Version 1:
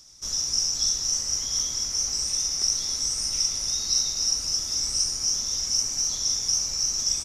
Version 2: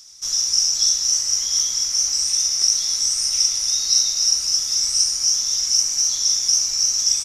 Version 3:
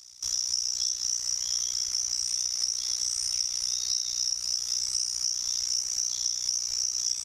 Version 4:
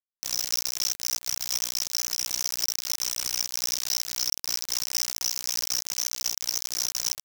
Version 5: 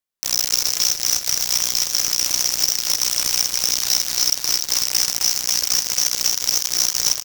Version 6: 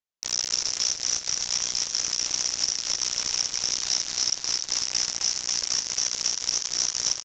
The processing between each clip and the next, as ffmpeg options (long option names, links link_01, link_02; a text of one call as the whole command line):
ffmpeg -i in.wav -af "tiltshelf=frequency=920:gain=-7" out.wav
ffmpeg -i in.wav -af "tremolo=f=61:d=0.919,acompressor=threshold=-23dB:ratio=6,equalizer=frequency=73:width=1.5:gain=3.5,volume=-1.5dB" out.wav
ffmpeg -i in.wav -af "acrusher=bits=3:mix=0:aa=0.000001" out.wav
ffmpeg -i in.wav -af "aecho=1:1:271|542|813|1084|1355|1626|1897:0.376|0.218|0.126|0.0733|0.0425|0.0247|0.0143,volume=8.5dB" out.wav
ffmpeg -i in.wav -af "aresample=16000,aresample=44100,volume=-6dB" out.wav